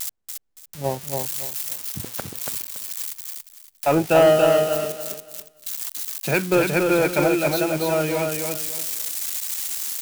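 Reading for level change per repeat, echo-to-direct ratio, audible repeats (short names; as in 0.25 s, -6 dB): -11.5 dB, -3.5 dB, 3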